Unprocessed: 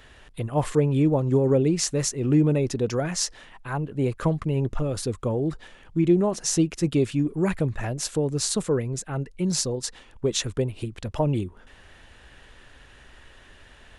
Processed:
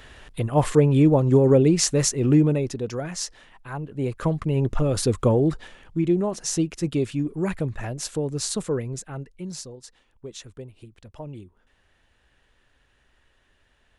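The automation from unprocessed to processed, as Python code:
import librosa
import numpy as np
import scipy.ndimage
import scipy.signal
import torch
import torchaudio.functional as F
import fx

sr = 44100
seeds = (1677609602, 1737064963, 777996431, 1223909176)

y = fx.gain(x, sr, db=fx.line((2.25, 4.0), (2.8, -4.0), (3.8, -4.0), (5.25, 7.5), (6.06, -2.0), (8.93, -2.0), (9.8, -14.0)))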